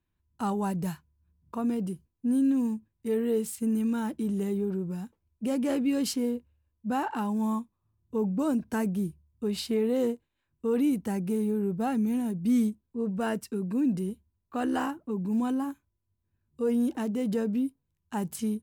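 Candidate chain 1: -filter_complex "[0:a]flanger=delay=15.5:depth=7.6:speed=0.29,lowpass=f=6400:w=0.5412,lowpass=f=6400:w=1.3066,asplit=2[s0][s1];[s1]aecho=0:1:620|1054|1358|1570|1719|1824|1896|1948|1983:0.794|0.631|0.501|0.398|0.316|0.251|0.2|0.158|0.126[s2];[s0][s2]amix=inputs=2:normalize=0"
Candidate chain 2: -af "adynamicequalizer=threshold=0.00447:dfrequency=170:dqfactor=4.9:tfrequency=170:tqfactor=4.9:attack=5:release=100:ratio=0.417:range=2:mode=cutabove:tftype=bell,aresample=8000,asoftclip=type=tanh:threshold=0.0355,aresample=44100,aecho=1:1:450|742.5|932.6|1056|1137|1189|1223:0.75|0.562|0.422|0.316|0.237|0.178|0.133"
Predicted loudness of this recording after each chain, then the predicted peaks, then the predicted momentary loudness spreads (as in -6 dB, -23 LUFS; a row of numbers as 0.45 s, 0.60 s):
-29.0 LUFS, -31.5 LUFS; -15.0 dBFS, -20.0 dBFS; 7 LU, 4 LU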